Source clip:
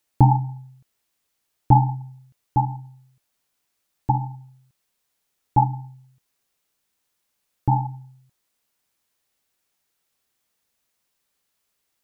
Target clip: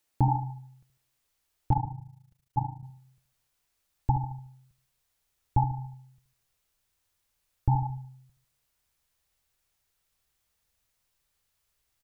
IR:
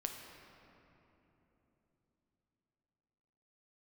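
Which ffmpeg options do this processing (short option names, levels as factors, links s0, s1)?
-filter_complex "[0:a]asubboost=boost=6.5:cutoff=91,alimiter=limit=0.266:level=0:latency=1:release=310,asettb=1/sr,asplit=3[s0][s1][s2];[s0]atrim=end=1.734[s3];[s1]atrim=start=1.73:end=2.83,asetpts=PTS-STARTPTS,afade=t=in:d=0.004:c=qsin,afade=t=out:st=1.096:d=0.004:c=qsin,tremolo=f=27:d=0.889[s4];[s2]atrim=start=2.826[s5];[s3][s4]acrossfade=d=0.004:c1=hsin:c2=qsin[s6];[s6][s5]acrossfade=d=0.004:c1=qsin:c2=hsin,asplit=2[s7][s8];[s8]adelay=74,lowpass=f=840:p=1,volume=0.316,asplit=2[s9][s10];[s10]adelay=74,lowpass=f=840:p=1,volume=0.45,asplit=2[s11][s12];[s12]adelay=74,lowpass=f=840:p=1,volume=0.45,asplit=2[s13][s14];[s14]adelay=74,lowpass=f=840:p=1,volume=0.45,asplit=2[s15][s16];[s16]adelay=74,lowpass=f=840:p=1,volume=0.45[s17];[s9][s11][s13][s15][s17]amix=inputs=5:normalize=0[s18];[s7][s18]amix=inputs=2:normalize=0,volume=0.794"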